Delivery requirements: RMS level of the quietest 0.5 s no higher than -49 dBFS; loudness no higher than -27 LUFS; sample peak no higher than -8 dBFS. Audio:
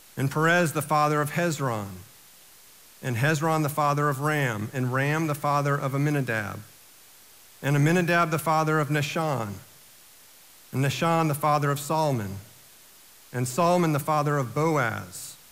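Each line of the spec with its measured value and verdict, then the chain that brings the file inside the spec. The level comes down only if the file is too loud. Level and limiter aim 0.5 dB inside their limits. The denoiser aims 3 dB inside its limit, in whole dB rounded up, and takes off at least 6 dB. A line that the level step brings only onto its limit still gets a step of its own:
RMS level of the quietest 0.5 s -52 dBFS: OK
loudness -25.0 LUFS: fail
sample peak -11.0 dBFS: OK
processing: gain -2.5 dB

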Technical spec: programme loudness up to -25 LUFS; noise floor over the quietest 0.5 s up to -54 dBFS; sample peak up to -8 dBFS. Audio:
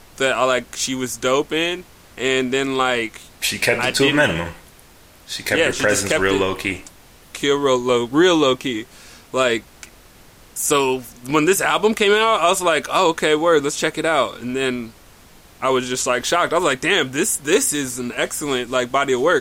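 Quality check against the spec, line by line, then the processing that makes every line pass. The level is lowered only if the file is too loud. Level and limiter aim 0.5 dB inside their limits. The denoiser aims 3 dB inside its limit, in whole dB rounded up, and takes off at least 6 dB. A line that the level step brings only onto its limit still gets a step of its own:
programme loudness -18.5 LUFS: fail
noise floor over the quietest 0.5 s -47 dBFS: fail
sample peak -4.5 dBFS: fail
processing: denoiser 6 dB, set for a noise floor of -47 dBFS; gain -7 dB

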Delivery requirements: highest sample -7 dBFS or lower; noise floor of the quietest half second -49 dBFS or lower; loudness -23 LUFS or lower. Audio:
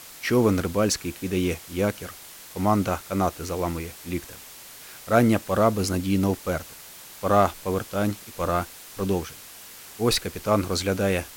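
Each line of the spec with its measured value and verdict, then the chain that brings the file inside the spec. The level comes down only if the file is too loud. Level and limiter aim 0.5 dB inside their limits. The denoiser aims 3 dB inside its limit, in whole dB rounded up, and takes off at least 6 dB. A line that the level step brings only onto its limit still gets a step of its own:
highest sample -5.0 dBFS: fail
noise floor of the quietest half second -44 dBFS: fail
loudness -25.0 LUFS: OK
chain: denoiser 8 dB, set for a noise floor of -44 dBFS; limiter -7.5 dBFS

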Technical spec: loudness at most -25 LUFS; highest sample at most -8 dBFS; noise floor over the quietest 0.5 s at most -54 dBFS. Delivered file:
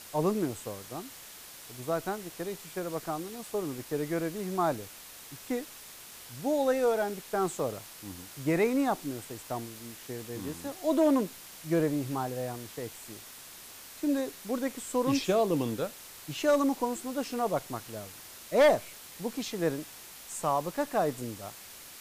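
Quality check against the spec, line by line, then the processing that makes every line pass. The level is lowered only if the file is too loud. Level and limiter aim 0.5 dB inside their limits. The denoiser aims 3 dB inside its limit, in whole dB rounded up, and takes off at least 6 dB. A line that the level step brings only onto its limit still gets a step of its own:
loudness -31.5 LUFS: OK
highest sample -16.0 dBFS: OK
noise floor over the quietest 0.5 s -48 dBFS: fail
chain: denoiser 9 dB, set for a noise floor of -48 dBFS

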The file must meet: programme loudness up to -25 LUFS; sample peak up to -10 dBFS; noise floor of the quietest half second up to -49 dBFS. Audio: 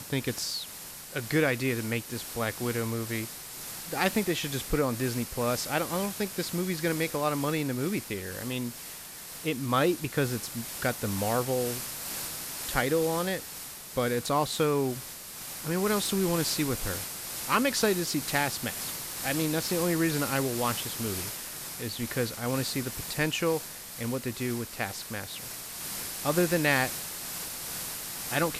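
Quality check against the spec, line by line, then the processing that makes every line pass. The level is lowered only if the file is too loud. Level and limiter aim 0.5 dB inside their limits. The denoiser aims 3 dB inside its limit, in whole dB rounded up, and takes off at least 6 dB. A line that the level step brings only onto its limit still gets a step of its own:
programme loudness -30.0 LUFS: OK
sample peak -11.5 dBFS: OK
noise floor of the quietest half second -43 dBFS: fail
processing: denoiser 9 dB, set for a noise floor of -43 dBFS

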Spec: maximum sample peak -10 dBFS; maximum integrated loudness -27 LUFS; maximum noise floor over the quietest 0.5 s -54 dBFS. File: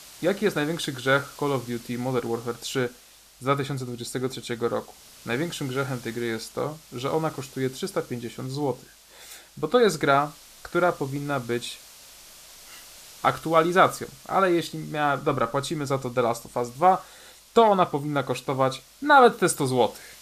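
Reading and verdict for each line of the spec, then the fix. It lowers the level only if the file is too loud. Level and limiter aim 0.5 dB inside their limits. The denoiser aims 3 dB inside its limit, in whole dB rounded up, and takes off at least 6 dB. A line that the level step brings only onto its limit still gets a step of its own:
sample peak -5.5 dBFS: fail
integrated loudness -25.0 LUFS: fail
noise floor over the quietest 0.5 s -52 dBFS: fail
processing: gain -2.5 dB; limiter -10.5 dBFS

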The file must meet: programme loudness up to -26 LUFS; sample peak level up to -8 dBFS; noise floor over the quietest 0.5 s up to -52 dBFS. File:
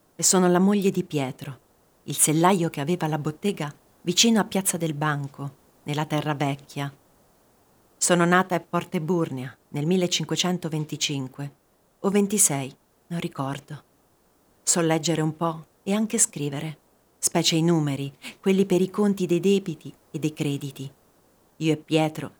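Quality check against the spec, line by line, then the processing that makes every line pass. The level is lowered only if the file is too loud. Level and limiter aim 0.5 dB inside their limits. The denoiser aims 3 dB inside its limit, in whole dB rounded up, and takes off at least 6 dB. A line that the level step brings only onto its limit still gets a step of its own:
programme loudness -24.0 LUFS: fail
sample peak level -4.0 dBFS: fail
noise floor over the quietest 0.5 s -63 dBFS: OK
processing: gain -2.5 dB; limiter -8.5 dBFS

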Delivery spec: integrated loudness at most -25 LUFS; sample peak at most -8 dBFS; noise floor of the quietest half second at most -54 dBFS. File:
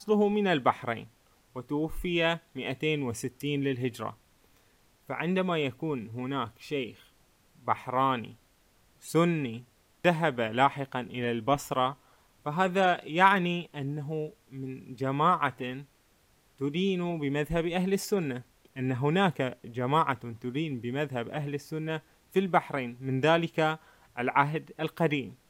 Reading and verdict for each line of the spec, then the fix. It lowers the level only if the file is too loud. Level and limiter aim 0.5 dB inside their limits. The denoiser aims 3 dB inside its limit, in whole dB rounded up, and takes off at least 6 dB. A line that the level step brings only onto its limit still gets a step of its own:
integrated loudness -29.5 LUFS: OK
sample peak -6.5 dBFS: fail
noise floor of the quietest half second -65 dBFS: OK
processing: limiter -8.5 dBFS

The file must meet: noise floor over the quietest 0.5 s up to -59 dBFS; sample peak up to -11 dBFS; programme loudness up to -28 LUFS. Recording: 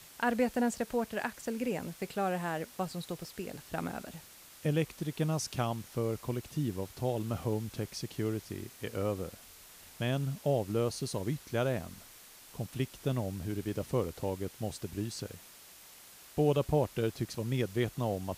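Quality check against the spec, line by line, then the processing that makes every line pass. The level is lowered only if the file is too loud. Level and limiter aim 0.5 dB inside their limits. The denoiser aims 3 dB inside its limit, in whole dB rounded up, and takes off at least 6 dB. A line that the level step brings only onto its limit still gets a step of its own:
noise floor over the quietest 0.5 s -54 dBFS: fail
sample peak -17.0 dBFS: OK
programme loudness -34.5 LUFS: OK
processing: denoiser 8 dB, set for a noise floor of -54 dBFS

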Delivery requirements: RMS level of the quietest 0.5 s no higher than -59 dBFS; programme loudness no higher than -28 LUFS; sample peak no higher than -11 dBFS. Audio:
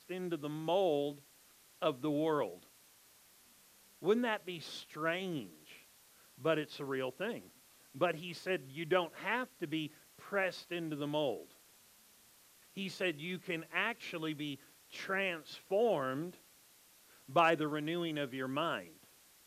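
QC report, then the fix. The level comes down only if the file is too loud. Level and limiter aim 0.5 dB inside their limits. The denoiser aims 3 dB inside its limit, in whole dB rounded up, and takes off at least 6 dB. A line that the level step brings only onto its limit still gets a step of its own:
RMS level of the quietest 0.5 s -64 dBFS: OK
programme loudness -36.5 LUFS: OK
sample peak -17.0 dBFS: OK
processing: none

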